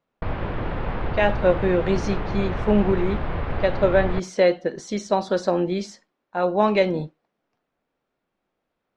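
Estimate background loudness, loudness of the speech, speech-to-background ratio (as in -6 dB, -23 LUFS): -29.5 LUFS, -23.0 LUFS, 6.5 dB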